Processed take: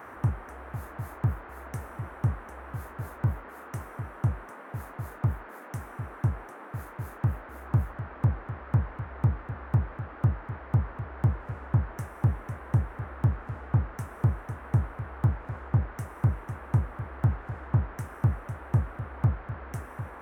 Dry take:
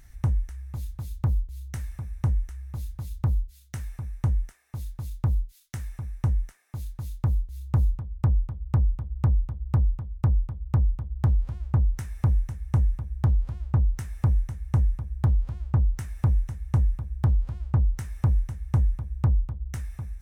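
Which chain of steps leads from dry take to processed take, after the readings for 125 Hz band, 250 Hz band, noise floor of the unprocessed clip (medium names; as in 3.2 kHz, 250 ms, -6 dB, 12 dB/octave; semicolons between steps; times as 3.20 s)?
-2.5 dB, 0.0 dB, -52 dBFS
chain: high-pass 86 Hz 24 dB/octave; peaking EQ 3.8 kHz -10.5 dB 1.8 oct; band noise 220–1600 Hz -45 dBFS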